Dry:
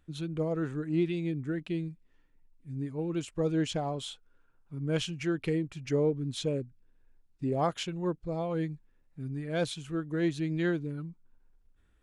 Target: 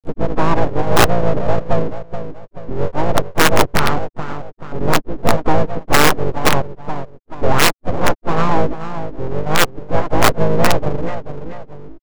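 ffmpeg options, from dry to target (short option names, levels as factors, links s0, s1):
-filter_complex "[0:a]deesser=0.95,lowpass=1600,agate=range=0.0224:threshold=0.002:ratio=3:detection=peak,highpass=180,afftfilt=real='re*gte(hypot(re,im),0.0562)':imag='im*gte(hypot(re,im),0.0562)':win_size=1024:overlap=0.75,asplit=2[s0][s1];[s1]aecho=0:1:431|862:0.224|0.0358[s2];[s0][s2]amix=inputs=2:normalize=0,asplit=2[s3][s4];[s4]asetrate=29433,aresample=44100,atempo=1.49831,volume=0.355[s5];[s3][s5]amix=inputs=2:normalize=0,aresample=16000,aeval=exprs='abs(val(0))':c=same,aresample=44100,acompressor=mode=upward:threshold=0.0141:ratio=2.5,aeval=exprs='(mod(11.9*val(0)+1,2)-1)/11.9':c=same,asplit=3[s6][s7][s8];[s7]asetrate=37084,aresample=44100,atempo=1.18921,volume=0.251[s9];[s8]asetrate=58866,aresample=44100,atempo=0.749154,volume=0.224[s10];[s6][s9][s10]amix=inputs=3:normalize=0,alimiter=level_in=12.6:limit=0.891:release=50:level=0:latency=1,volume=0.891"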